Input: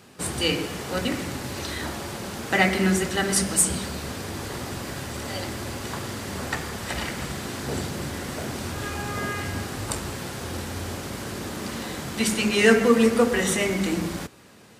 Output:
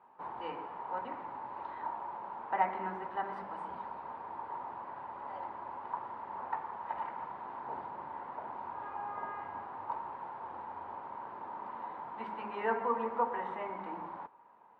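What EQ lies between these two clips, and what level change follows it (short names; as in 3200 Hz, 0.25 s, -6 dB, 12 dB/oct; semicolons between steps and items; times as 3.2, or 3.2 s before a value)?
band-pass 930 Hz, Q 11; air absorption 460 m; +9.0 dB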